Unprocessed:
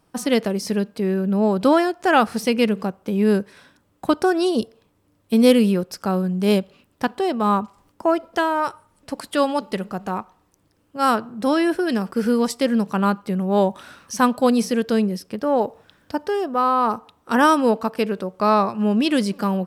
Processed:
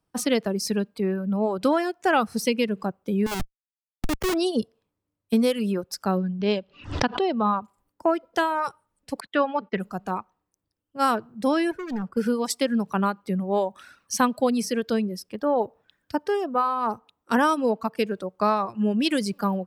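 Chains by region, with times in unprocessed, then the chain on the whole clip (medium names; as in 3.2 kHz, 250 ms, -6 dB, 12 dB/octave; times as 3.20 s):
3.26–4.34 s: companding laws mixed up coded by A + high-pass 99 Hz 24 dB/octave + Schmitt trigger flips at -25 dBFS
6.17–7.62 s: low-pass 5.3 kHz 24 dB/octave + peaking EQ 2.8 kHz +2.5 dB 0.23 oct + swell ahead of each attack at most 91 dB/s
9.20–9.80 s: low-pass 2.6 kHz + gate -43 dBFS, range -24 dB + peaking EQ 1.8 kHz +5 dB 1.4 oct
11.71–12.17 s: treble shelf 2.6 kHz -11.5 dB + hard clipper -23.5 dBFS
whole clip: compression 4:1, threshold -18 dBFS; reverb removal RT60 1.6 s; three bands expanded up and down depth 40%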